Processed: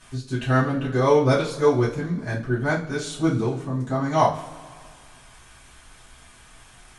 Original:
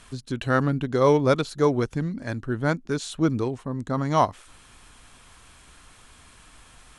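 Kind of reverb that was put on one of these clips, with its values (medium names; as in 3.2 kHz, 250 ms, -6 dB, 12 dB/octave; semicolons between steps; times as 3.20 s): two-slope reverb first 0.3 s, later 2 s, from -21 dB, DRR -10 dB; trim -8 dB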